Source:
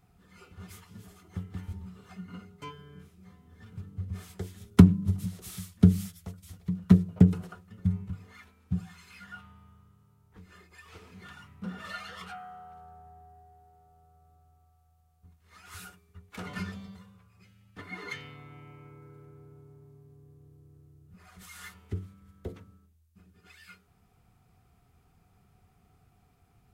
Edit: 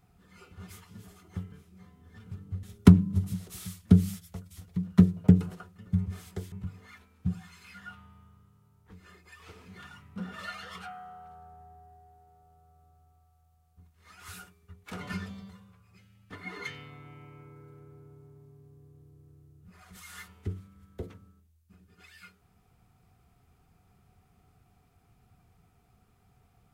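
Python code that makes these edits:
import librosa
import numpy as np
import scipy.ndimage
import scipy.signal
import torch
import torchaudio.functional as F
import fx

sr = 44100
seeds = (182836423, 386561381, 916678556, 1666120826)

y = fx.edit(x, sr, fx.cut(start_s=1.52, length_s=1.46),
    fx.move(start_s=4.09, length_s=0.46, to_s=7.98), tone=tone)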